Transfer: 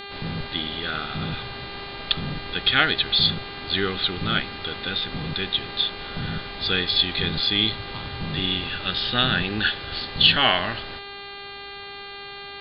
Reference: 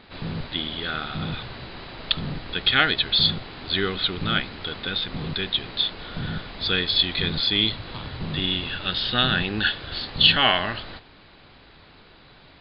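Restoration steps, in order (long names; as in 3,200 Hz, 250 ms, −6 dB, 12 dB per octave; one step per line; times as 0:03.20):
hum removal 400.3 Hz, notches 11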